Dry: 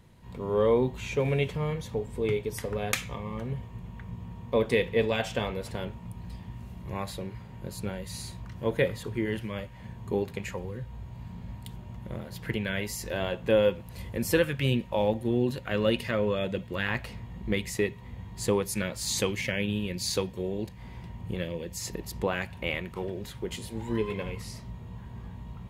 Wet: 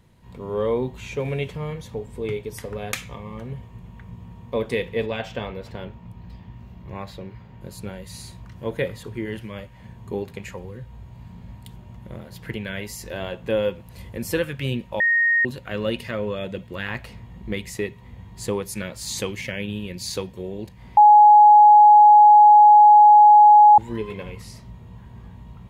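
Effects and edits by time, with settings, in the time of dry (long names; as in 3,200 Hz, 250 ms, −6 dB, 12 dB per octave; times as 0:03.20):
0:05.06–0:07.61: parametric band 9,900 Hz −14.5 dB 1 octave
0:15.00–0:15.45: beep over 1,860 Hz −15.5 dBFS
0:20.97–0:23.78: beep over 838 Hz −7 dBFS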